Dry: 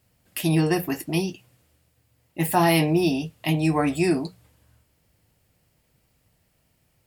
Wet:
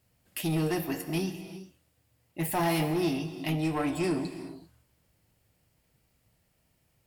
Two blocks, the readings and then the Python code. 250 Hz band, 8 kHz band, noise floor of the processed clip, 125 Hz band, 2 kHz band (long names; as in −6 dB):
−7.0 dB, −6.0 dB, −72 dBFS, −7.5 dB, −7.5 dB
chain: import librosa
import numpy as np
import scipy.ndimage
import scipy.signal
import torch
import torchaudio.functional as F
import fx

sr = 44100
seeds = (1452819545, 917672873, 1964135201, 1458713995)

y = 10.0 ** (-18.5 / 20.0) * np.tanh(x / 10.0 ** (-18.5 / 20.0))
y = fx.rev_gated(y, sr, seeds[0], gate_ms=420, shape='flat', drr_db=9.0)
y = F.gain(torch.from_numpy(y), -4.5).numpy()